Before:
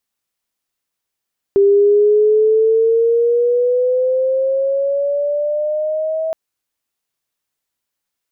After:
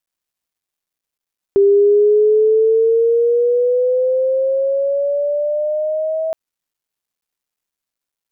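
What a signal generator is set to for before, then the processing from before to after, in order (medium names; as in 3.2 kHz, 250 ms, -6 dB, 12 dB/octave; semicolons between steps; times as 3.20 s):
gliding synth tone sine, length 4.77 s, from 396 Hz, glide +8.5 st, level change -9.5 dB, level -7.5 dB
word length cut 12-bit, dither none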